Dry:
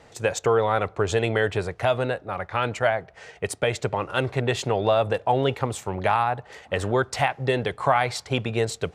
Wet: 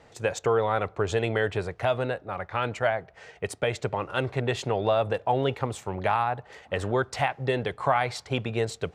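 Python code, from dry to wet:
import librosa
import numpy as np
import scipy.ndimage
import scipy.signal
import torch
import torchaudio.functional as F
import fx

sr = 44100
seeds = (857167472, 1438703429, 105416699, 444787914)

y = fx.high_shelf(x, sr, hz=6300.0, db=-5.5)
y = y * 10.0 ** (-3.0 / 20.0)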